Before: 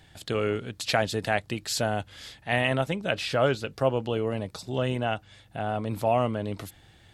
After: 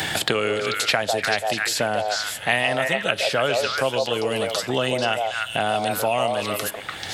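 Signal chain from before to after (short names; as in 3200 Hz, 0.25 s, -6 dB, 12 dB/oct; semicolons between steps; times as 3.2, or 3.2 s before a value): tilt +2.5 dB/oct; delay with a stepping band-pass 0.146 s, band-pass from 630 Hz, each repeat 1.4 oct, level 0 dB; on a send at -20.5 dB: reverb RT60 0.75 s, pre-delay 4 ms; on the sum: three-band squash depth 100%; gain +3 dB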